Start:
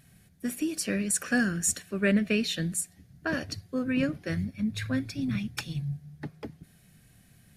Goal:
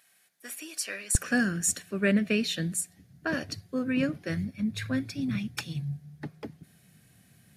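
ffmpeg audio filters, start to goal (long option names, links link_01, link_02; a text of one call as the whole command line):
ffmpeg -i in.wav -af "asetnsamples=nb_out_samples=441:pad=0,asendcmd='1.15 highpass f 95',highpass=800" out.wav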